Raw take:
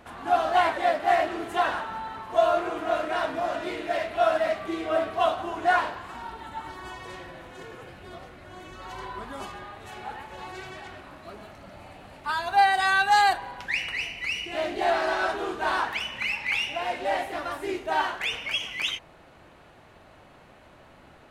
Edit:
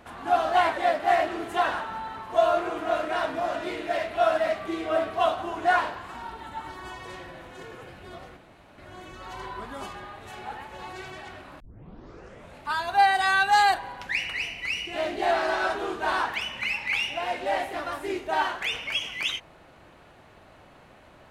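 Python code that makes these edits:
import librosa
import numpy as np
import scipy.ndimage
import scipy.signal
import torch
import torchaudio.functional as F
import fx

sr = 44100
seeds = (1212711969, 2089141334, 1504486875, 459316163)

y = fx.edit(x, sr, fx.insert_room_tone(at_s=8.37, length_s=0.41),
    fx.tape_start(start_s=11.19, length_s=1.02), tone=tone)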